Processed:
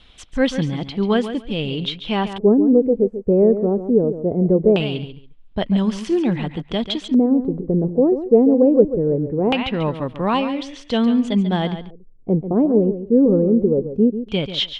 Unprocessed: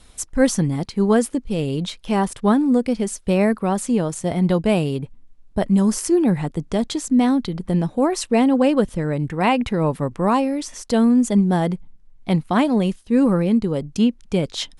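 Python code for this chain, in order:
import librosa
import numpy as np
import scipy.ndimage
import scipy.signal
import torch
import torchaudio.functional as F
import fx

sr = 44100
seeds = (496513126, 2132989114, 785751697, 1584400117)

y = fx.echo_feedback(x, sr, ms=140, feedback_pct=18, wet_db=-11.0)
y = fx.filter_lfo_lowpass(y, sr, shape='square', hz=0.21, low_hz=440.0, high_hz=3200.0, q=3.9)
y = y * librosa.db_to_amplitude(-2.0)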